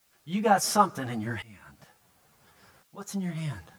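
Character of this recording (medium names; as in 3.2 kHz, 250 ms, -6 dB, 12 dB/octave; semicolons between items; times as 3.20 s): tremolo saw up 0.71 Hz, depth 95%; a quantiser's noise floor 12-bit, dither triangular; a shimmering, thickened sound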